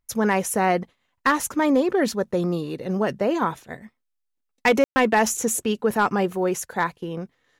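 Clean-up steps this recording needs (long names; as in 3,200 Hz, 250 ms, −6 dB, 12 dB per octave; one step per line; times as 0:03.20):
clipped peaks rebuilt −11 dBFS
ambience match 0:04.84–0:04.96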